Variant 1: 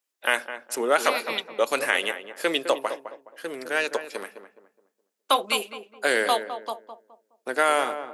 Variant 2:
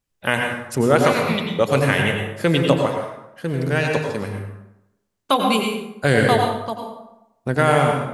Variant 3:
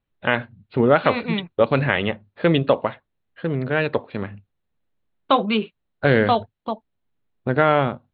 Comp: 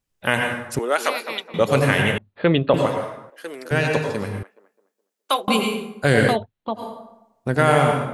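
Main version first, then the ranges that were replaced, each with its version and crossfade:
2
0.79–1.54 s: from 1
2.18–2.74 s: from 3
3.30–3.71 s: from 1
4.43–5.48 s: from 1
6.33–6.78 s: from 3, crossfade 0.10 s

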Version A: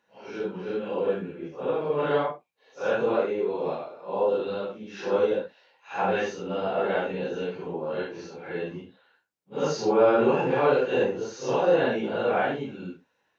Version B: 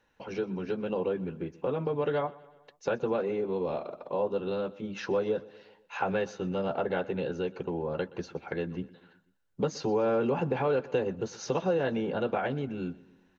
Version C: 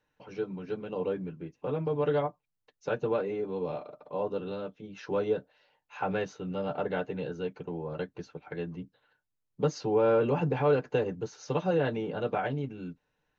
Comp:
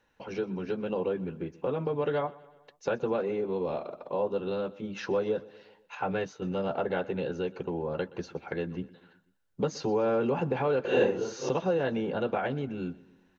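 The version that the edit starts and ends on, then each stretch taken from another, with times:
B
5.95–6.42 s: from C
10.85–11.49 s: from A

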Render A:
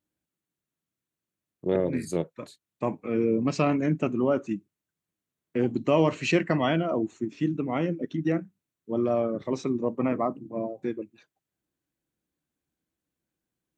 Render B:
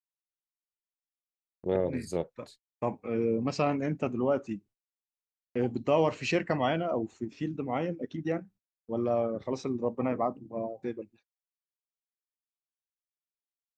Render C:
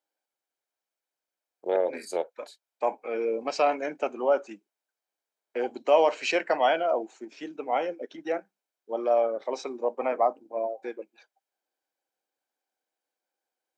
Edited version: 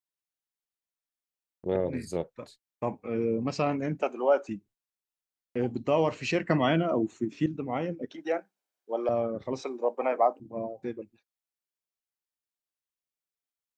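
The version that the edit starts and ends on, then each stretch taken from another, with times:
B
4.02–4.49 s: from C
6.48–7.46 s: from A
8.11–9.09 s: from C
9.62–10.40 s: from C

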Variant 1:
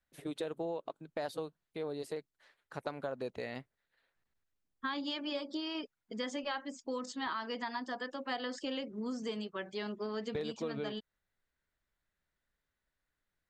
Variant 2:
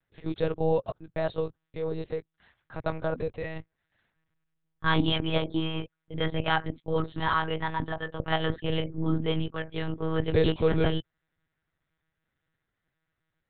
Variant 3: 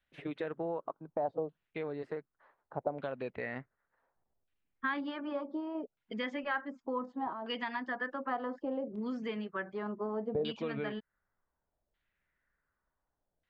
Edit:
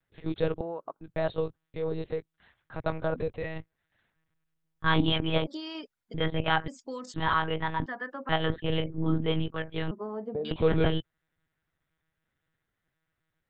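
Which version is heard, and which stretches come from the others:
2
0.61–1.01 s: from 3
5.47–6.14 s: from 1
6.68–7.14 s: from 1
7.86–8.29 s: from 3
9.91–10.51 s: from 3

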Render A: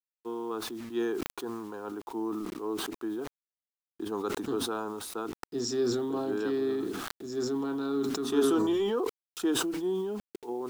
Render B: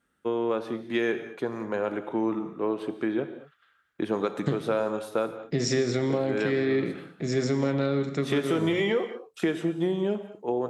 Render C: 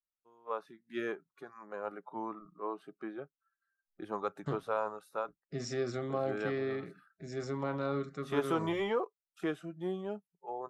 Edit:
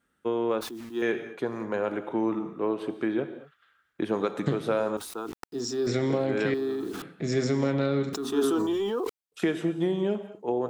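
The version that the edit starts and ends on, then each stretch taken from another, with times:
B
0.61–1.02 s: from A
4.97–5.87 s: from A
6.54–7.02 s: from A
8.13–9.32 s: from A
not used: C

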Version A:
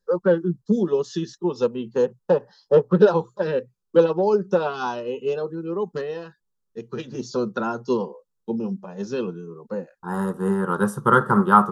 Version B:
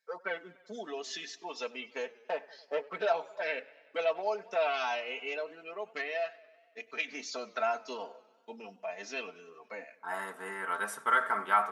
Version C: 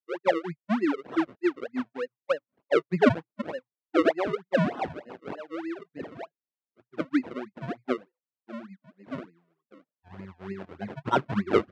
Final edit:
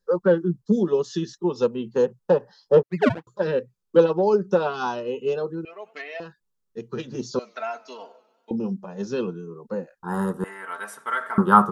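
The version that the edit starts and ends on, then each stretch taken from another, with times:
A
2.83–3.27 s: from C
5.65–6.20 s: from B
7.39–8.51 s: from B
10.44–11.38 s: from B

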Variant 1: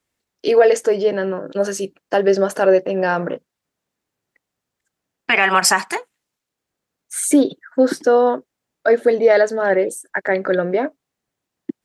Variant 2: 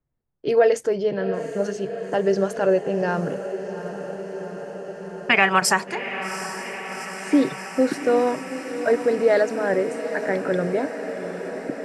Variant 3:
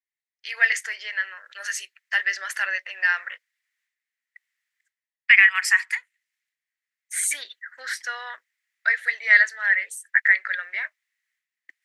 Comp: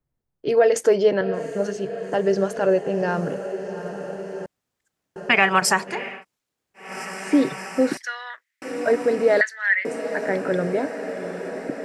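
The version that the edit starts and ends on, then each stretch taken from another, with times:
2
0.76–1.21 s: from 1
4.46–5.16 s: from 1
6.13–6.86 s: from 1, crossfade 0.24 s
7.97–8.62 s: from 3
9.41–9.85 s: from 3

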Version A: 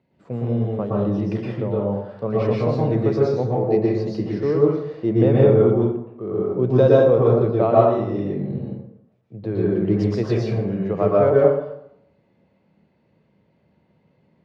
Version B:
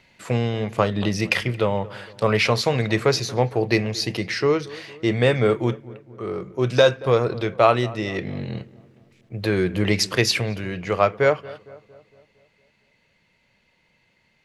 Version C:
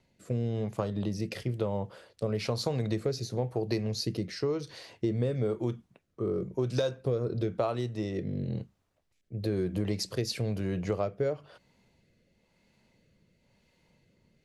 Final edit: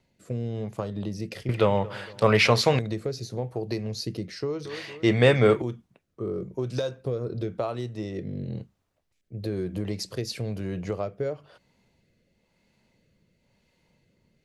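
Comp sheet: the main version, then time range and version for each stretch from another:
C
1.49–2.79 s: from B
4.65–5.62 s: from B
not used: A

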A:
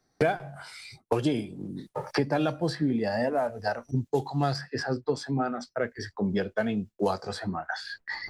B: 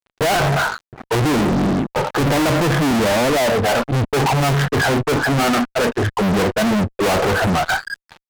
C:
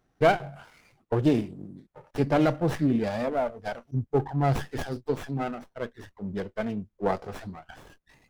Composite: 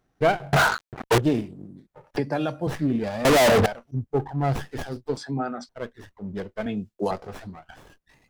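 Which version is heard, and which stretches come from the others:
C
0.53–1.18 s: from B
2.17–2.67 s: from A
3.25–3.66 s: from B
5.17–5.69 s: from A
6.66–7.11 s: from A

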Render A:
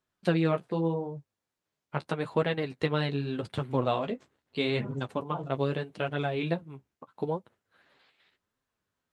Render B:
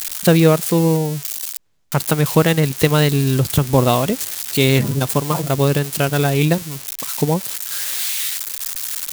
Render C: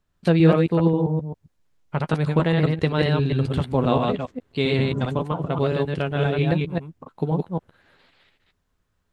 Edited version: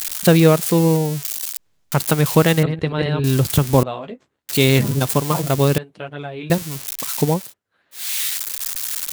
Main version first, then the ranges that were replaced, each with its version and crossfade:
B
2.63–3.24 s: from C
3.83–4.49 s: from A
5.78–6.50 s: from A
7.42–8.03 s: from A, crossfade 0.24 s

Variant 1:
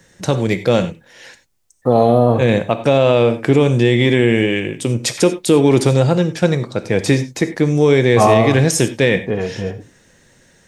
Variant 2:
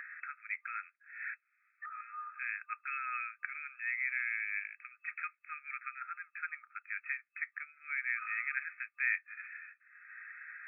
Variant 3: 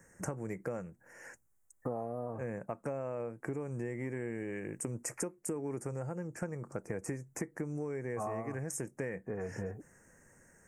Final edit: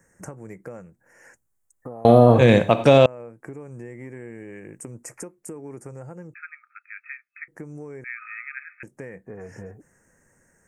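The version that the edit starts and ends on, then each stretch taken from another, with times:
3
2.05–3.06 s: from 1
6.34–7.48 s: from 2
8.04–8.83 s: from 2

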